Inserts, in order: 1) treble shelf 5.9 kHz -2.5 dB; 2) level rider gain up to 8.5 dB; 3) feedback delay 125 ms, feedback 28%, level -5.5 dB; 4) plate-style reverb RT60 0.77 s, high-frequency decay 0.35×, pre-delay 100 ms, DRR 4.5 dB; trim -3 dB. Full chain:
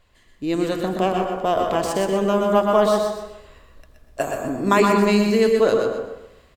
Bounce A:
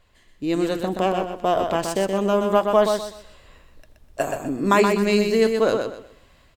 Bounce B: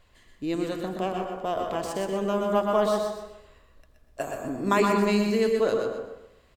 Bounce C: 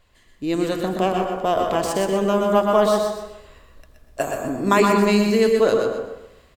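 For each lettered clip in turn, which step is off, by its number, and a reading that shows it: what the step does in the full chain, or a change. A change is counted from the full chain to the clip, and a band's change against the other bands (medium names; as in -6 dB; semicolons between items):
4, echo-to-direct -1.5 dB to -5.0 dB; 2, momentary loudness spread change +1 LU; 1, 8 kHz band +1.5 dB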